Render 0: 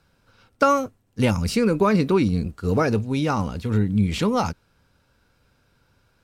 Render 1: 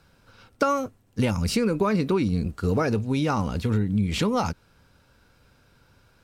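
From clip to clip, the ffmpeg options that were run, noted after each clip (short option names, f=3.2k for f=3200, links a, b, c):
-af "acompressor=threshold=-26dB:ratio=3,volume=4dB"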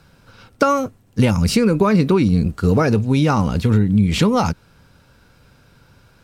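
-af "equalizer=f=150:w=1.5:g=4,volume=6.5dB"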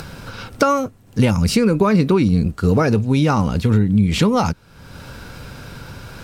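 -af "acompressor=mode=upward:threshold=-20dB:ratio=2.5"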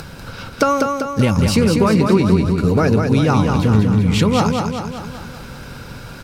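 -af "aecho=1:1:195|390|585|780|975|1170|1365|1560:0.596|0.34|0.194|0.11|0.0629|0.0358|0.0204|0.0116"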